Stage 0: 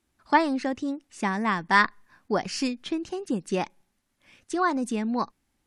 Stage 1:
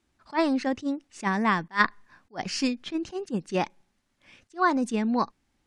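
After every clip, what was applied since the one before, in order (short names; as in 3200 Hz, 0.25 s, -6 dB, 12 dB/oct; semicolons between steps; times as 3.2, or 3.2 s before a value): LPF 7600 Hz 12 dB/oct; attack slew limiter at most 350 dB/s; gain +2 dB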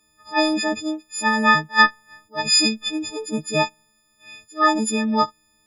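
frequency quantiser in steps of 6 st; gain +3.5 dB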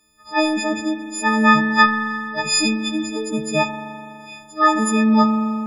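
dynamic EQ 4600 Hz, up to -6 dB, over -37 dBFS, Q 1.8; spring tank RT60 2.7 s, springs 41 ms, chirp 45 ms, DRR 4 dB; gain +1.5 dB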